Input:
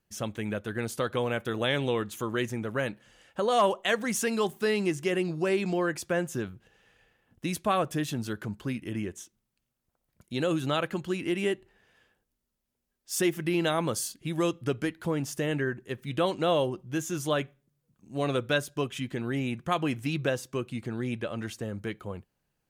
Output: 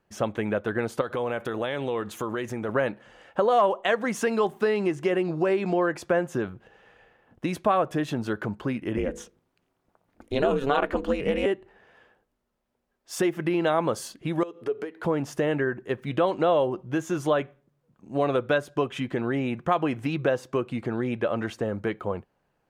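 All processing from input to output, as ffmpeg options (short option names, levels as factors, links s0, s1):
-filter_complex "[0:a]asettb=1/sr,asplit=3[s0][s1][s2];[s0]atrim=end=1.014[s3];[s1]atrim=start=1.01:end=2.69,asetpts=PTS-STARTPTS,afade=t=in:d=0.004:c=qsin,afade=t=out:st=1.676:d=0.004:c=qsin,highshelf=f=4900:g=7.5,acompressor=threshold=0.02:ratio=5:attack=3.2:release=140:knee=1:detection=peak[s4];[s2]atrim=start=2.686[s5];[s3][s4]acrossfade=d=0.004:c1=hsin:c2=qsin[s6];[s6][s5]acrossfade=d=0.004:c1=qsin:c2=hsin,asettb=1/sr,asplit=3[s7][s8][s9];[s7]atrim=end=8.974[s10];[s8]atrim=start=8.97:end=11.46,asetpts=PTS-STARTPTS,afade=t=in:d=0.004:c=qsin,afade=t=out:st=2.486:d=0.004:c=qsin,bandreject=f=50:t=h:w=6,bandreject=f=100:t=h:w=6,bandreject=f=150:t=h:w=6,bandreject=f=200:t=h:w=6,bandreject=f=250:t=h:w=6,bandreject=f=300:t=h:w=6,bandreject=f=350:t=h:w=6,acontrast=57,aeval=exprs='val(0)*sin(2*PI*140*n/s)':c=same[s11];[s9]atrim=start=11.456[s12];[s10][s11]acrossfade=d=0.004:c1=hsin:c2=qsin[s13];[s13][s12]acrossfade=d=0.004:c1=qsin:c2=hsin,asettb=1/sr,asplit=3[s14][s15][s16];[s14]atrim=end=14.434[s17];[s15]atrim=start=14.43:end=15.03,asetpts=PTS-STARTPTS,afade=t=in:d=0.004:c=qsin,afade=t=out:st=0.596:d=0.004:c=qsin,highpass=260,acompressor=threshold=0.00794:ratio=10:attack=3.2:release=140:knee=1:detection=peak,equalizer=f=430:t=o:w=0.25:g=15[s18];[s16]atrim=start=15.026[s19];[s17][s18]acrossfade=d=0.004:c1=hsin:c2=qsin[s20];[s20][s19]acrossfade=d=0.004:c1=qsin:c2=hsin,aemphasis=mode=reproduction:type=cd,acompressor=threshold=0.0282:ratio=3,equalizer=f=750:w=0.41:g=10.5,volume=1.19"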